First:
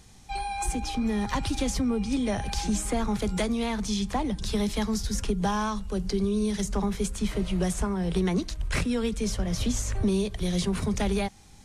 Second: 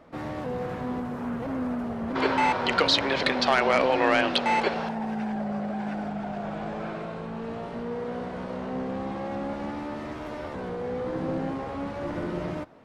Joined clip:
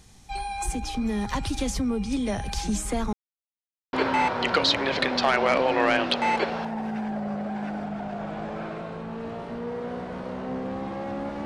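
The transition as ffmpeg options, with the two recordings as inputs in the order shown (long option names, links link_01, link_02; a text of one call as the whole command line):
ffmpeg -i cue0.wav -i cue1.wav -filter_complex "[0:a]apad=whole_dur=11.45,atrim=end=11.45,asplit=2[link_01][link_02];[link_01]atrim=end=3.13,asetpts=PTS-STARTPTS,afade=type=out:start_time=3.126:duration=0.004:curve=hsin[link_03];[link_02]atrim=start=3.13:end=3.93,asetpts=PTS-STARTPTS,volume=0[link_04];[1:a]atrim=start=2.17:end=9.69,asetpts=PTS-STARTPTS,afade=type=in:duration=0.004:curve=hsin[link_05];[link_03][link_04][link_05]concat=n=3:v=0:a=1" out.wav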